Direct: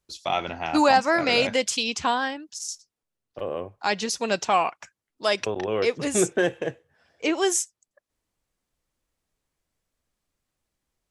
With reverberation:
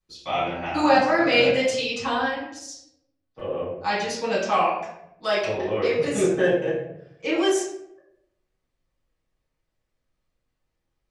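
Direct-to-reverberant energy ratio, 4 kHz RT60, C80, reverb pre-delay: -11.0 dB, 0.50 s, 5.5 dB, 5 ms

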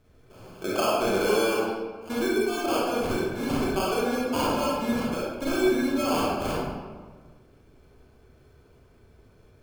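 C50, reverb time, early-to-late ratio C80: -3.0 dB, 1.5 s, 0.5 dB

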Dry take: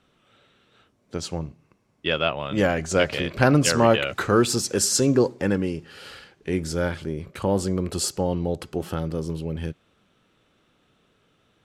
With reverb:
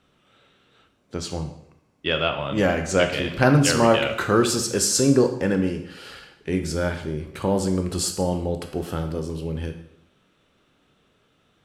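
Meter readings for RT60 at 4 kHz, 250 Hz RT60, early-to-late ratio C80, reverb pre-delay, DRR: 0.65 s, 0.75 s, 12.0 dB, 7 ms, 6.0 dB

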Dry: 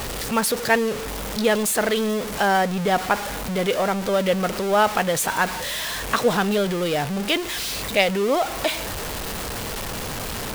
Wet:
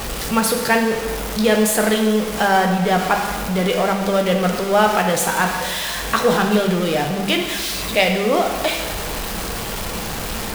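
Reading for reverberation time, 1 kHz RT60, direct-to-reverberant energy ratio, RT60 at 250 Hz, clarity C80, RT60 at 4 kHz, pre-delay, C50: 1.4 s, 1.4 s, 2.0 dB, 1.3 s, 7.5 dB, 1.2 s, 3 ms, 5.5 dB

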